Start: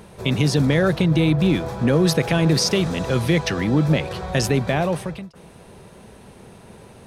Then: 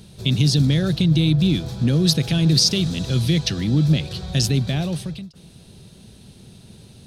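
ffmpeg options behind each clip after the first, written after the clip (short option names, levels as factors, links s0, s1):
-af "equalizer=f=125:t=o:w=1:g=4,equalizer=f=500:t=o:w=1:g=-8,equalizer=f=1000:t=o:w=1:g=-12,equalizer=f=2000:t=o:w=1:g=-8,equalizer=f=4000:t=o:w=1:g=9"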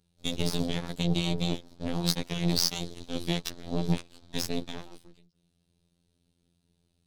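-af "aeval=exprs='0.668*(cos(1*acos(clip(val(0)/0.668,-1,1)))-cos(1*PI/2))+0.106*(cos(7*acos(clip(val(0)/0.668,-1,1)))-cos(7*PI/2))+0.0422*(cos(8*acos(clip(val(0)/0.668,-1,1)))-cos(8*PI/2))':c=same,afftfilt=real='hypot(re,im)*cos(PI*b)':imag='0':win_size=2048:overlap=0.75,volume=0.531"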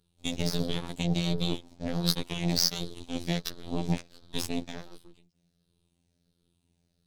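-af "afftfilt=real='re*pow(10,6/40*sin(2*PI*(0.62*log(max(b,1)*sr/1024/100)/log(2)-(-1.4)*(pts-256)/sr)))':imag='im*pow(10,6/40*sin(2*PI*(0.62*log(max(b,1)*sr/1024/100)/log(2)-(-1.4)*(pts-256)/sr)))':win_size=1024:overlap=0.75,volume=0.891"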